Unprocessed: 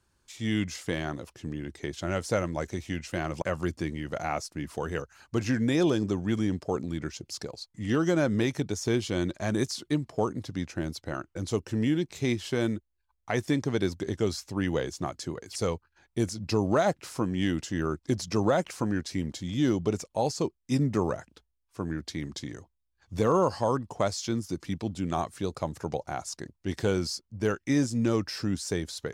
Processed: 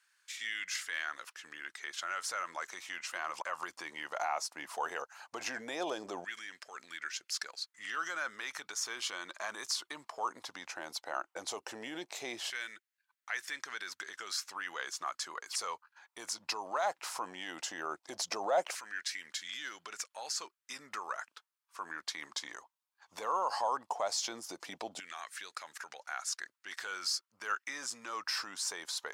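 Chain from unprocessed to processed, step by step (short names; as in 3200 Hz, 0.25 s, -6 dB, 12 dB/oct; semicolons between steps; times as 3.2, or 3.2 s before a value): limiter -24 dBFS, peak gain reduction 12 dB; LFO high-pass saw down 0.16 Hz 670–1800 Hz; gain +1 dB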